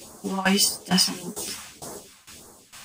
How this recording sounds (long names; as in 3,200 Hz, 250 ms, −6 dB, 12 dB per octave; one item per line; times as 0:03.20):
phaser sweep stages 2, 1.7 Hz, lowest notch 380–2,700 Hz
tremolo saw down 2.2 Hz, depth 90%
a shimmering, thickened sound